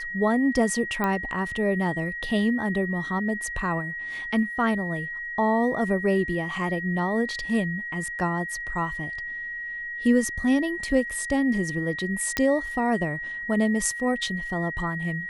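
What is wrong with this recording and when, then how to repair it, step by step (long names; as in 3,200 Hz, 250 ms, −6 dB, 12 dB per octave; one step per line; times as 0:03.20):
whistle 1,900 Hz −31 dBFS
0:01.04: click −13 dBFS
0:12.37: click −8 dBFS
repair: click removal
notch filter 1,900 Hz, Q 30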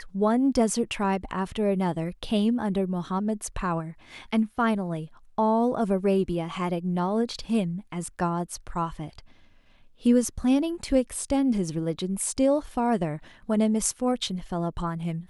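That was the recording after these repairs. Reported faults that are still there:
none of them is left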